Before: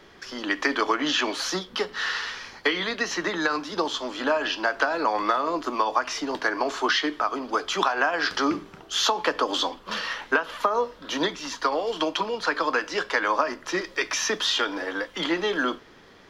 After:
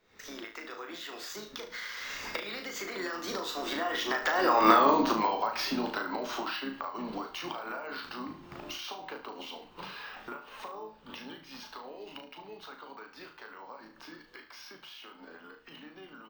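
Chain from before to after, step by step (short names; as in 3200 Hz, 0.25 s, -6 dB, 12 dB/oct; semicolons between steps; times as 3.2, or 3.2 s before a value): recorder AGC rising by 68 dB/s; Doppler pass-by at 4.74, 39 m/s, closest 6.9 m; in parallel at +2 dB: compressor 6:1, threshold -42 dBFS, peak gain reduction 22.5 dB; on the sum: de-hum 158.2 Hz, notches 12; on a send: flutter echo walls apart 6.3 m, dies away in 0.36 s; on the sum: careless resampling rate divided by 2×, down filtered, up hold; harmoniser -5 st -12 dB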